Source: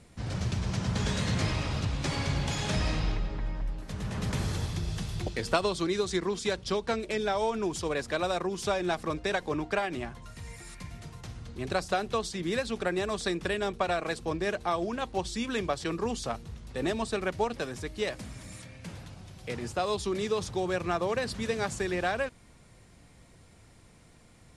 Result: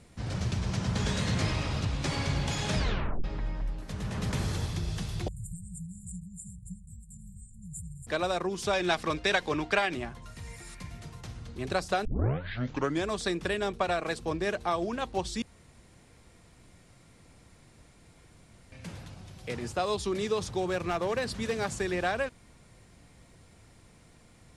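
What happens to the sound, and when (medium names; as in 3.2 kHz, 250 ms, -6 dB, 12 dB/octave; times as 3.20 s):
2.77 s: tape stop 0.47 s
5.28–8.07 s: brick-wall FIR band-stop 190–7000 Hz
8.73–9.94 s: peaking EQ 3.2 kHz +7.5 dB 2.6 oct
12.05 s: tape start 1.04 s
15.42–18.72 s: room tone
20.61–21.65 s: hard clipper -23.5 dBFS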